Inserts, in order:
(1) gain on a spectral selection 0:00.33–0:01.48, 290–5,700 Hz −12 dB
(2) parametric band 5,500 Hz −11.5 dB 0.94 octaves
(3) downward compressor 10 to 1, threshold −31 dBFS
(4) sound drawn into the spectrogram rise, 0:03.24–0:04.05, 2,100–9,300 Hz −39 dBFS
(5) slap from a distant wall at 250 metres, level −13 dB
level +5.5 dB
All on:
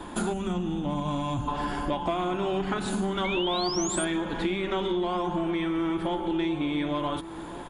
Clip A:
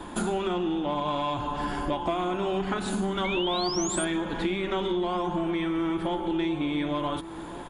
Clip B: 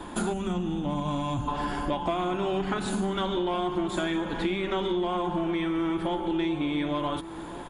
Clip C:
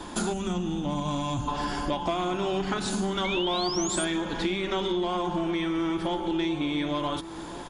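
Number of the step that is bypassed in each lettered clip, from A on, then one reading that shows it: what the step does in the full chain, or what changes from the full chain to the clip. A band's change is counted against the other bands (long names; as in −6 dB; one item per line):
1, 125 Hz band −2.0 dB
4, 8 kHz band −8.0 dB
2, 4 kHz band +2.5 dB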